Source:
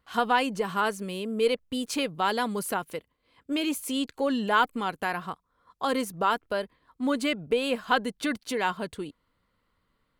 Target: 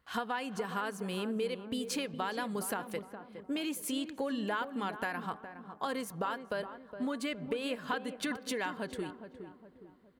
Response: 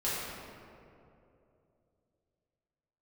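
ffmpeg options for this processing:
-filter_complex "[0:a]highpass=40,equalizer=f=1700:w=5.8:g=5,bandreject=f=383.2:t=h:w=4,bandreject=f=766.4:t=h:w=4,bandreject=f=1149.6:t=h:w=4,acompressor=threshold=0.0282:ratio=6,asplit=2[s0][s1];[s1]adelay=414,lowpass=f=1100:p=1,volume=0.355,asplit=2[s2][s3];[s3]adelay=414,lowpass=f=1100:p=1,volume=0.46,asplit=2[s4][s5];[s5]adelay=414,lowpass=f=1100:p=1,volume=0.46,asplit=2[s6][s7];[s7]adelay=414,lowpass=f=1100:p=1,volume=0.46,asplit=2[s8][s9];[s9]adelay=414,lowpass=f=1100:p=1,volume=0.46[s10];[s0][s2][s4][s6][s8][s10]amix=inputs=6:normalize=0,asplit=2[s11][s12];[1:a]atrim=start_sample=2205,lowpass=6000[s13];[s12][s13]afir=irnorm=-1:irlink=0,volume=0.0376[s14];[s11][s14]amix=inputs=2:normalize=0,volume=0.841"

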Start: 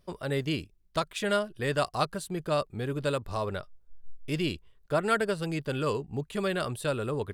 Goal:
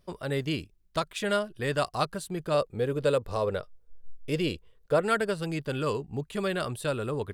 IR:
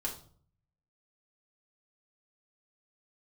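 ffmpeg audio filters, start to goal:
-filter_complex "[0:a]asettb=1/sr,asplit=3[s0][s1][s2];[s0]atrim=end=2.544[s3];[s1]atrim=start=2.54:end=5.02,asetpts=PTS-STARTPTS,afade=t=in:d=0.004:c=qsin,afade=t=out:st=2.476:d=0.004:c=qsin,equalizer=f=490:w=4.5:g=12[s4];[s2]atrim=start=5.016[s5];[s3][s4]acrossfade=d=0.004:c1=hsin:c2=qsin[s6];[s6][s5]acrossfade=d=0.004:c1=qsin:c2=hsin"

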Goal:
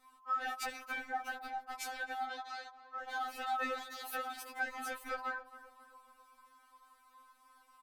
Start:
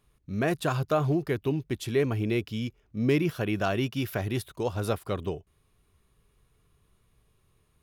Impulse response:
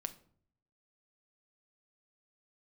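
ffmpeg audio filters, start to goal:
-filter_complex "[0:a]alimiter=limit=0.106:level=0:latency=1:release=109,acompressor=threshold=0.0158:ratio=6,asoftclip=type=hard:threshold=0.0158,aeval=exprs='val(0)*sin(2*PI*1100*n/s)':c=same,asettb=1/sr,asplit=3[s0][s1][s2];[s0]atrim=end=2.294[s3];[s1]atrim=start=2.29:end=2.99,asetpts=PTS-STARTPTS,afade=t=in:d=0.004:c=qsin,afade=t=out:st=0.696:d=0.004:c=qsin,highpass=360,lowpass=5400[s4];[s2]atrim=start=2.986[s5];[s3][s4]acrossfade=d=0.004:c1=hsin:c2=qsin[s6];[s6][s5]acrossfade=d=0.004:c1=qsin:c2=hsin,asplit=2[s7][s8];[s8]adelay=268,lowpass=f=1600:p=1,volume=0.2,asplit=2[s9][s10];[s10]adelay=268,lowpass=f=1600:p=1,volume=0.55,asplit=2[s11][s12];[s12]adelay=268,lowpass=f=1600:p=1,volume=0.55,asplit=2[s13][s14];[s14]adelay=268,lowpass=f=1600:p=1,volume=0.55,asplit=2[s15][s16];[s16]adelay=268,lowpass=f=1600:p=1,volume=0.55,asplit=2[s17][s18];[s18]adelay=268,lowpass=f=1600:p=1,volume=0.55[s19];[s7][s9][s11][s13][s15][s17][s19]amix=inputs=7:normalize=0,afftfilt=real='re*3.46*eq(mod(b,12),0)':imag='im*3.46*eq(mod(b,12),0)':win_size=2048:overlap=0.75,volume=2.51"

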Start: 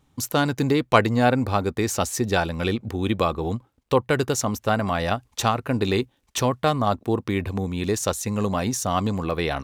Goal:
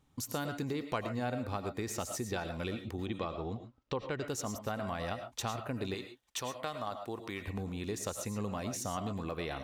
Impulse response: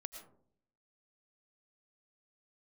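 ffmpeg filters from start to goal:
-filter_complex "[0:a]asettb=1/sr,asplit=3[s0][s1][s2];[s0]atrim=end=3.064[s3];[s1]atrim=start=3.06:end=4.28,asetpts=PTS-STARTPTS,afade=t=in:d=0.004:c=qsin,afade=t=out:st=1.216:d=0.004:c=qsin,lowpass=f=6100:w=0.5412,lowpass=f=6100:w=1.3066[s4];[s2]atrim=start=4.276[s5];[s3][s4]acrossfade=d=0.004:c1=hsin:c2=qsin[s6];[s6][s5]acrossfade=d=0.004:c1=qsin:c2=hsin,asettb=1/sr,asplit=3[s7][s8][s9];[s7]atrim=end=5.944[s10];[s8]atrim=start=5.94:end=7.48,asetpts=PTS-STARTPTS,afade=t=in:d=0.004:c=qsin,afade=t=out:st=1.536:d=0.004:c=qsin,lowshelf=f=450:g=-11.5[s11];[s9]atrim=start=7.476[s12];[s10][s11]acrossfade=d=0.004:c1=hsin:c2=qsin[s13];[s13][s12]acrossfade=d=0.004:c1=qsin:c2=hsin,acompressor=threshold=0.0316:ratio=2.5[s14];[1:a]atrim=start_sample=2205,afade=t=out:st=0.19:d=0.01,atrim=end_sample=8820[s15];[s14][s15]afir=irnorm=-1:irlink=0,volume=0.75"

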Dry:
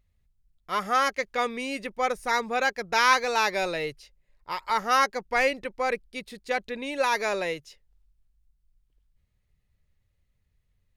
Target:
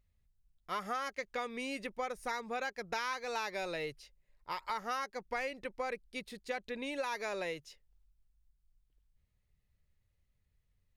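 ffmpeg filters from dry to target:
-af "acompressor=threshold=0.0355:ratio=6,volume=0.562"

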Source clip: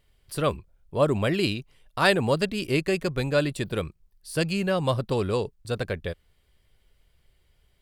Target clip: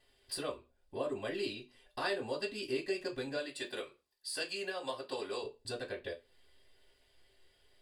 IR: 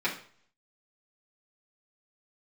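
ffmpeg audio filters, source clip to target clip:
-filter_complex "[0:a]asettb=1/sr,asplit=3[s0][s1][s2];[s0]atrim=end=3.364[s3];[s1]atrim=start=3.36:end=5.44,asetpts=PTS-STARTPTS,afade=t=in:d=0.004:c=qsin,afade=t=out:st=2.076:d=0.004:c=qsin,highpass=f=710:p=1[s4];[s2]atrim=start=5.436[s5];[s3][s4]acrossfade=d=0.004:c1=hsin:c2=qsin[s6];[s6][s5]acrossfade=d=0.004:c1=qsin:c2=hsin,acompressor=threshold=0.01:ratio=3[s7];[1:a]atrim=start_sample=2205,asetrate=88200,aresample=44100[s8];[s7][s8]afir=irnorm=-1:irlink=0,volume=0.891"

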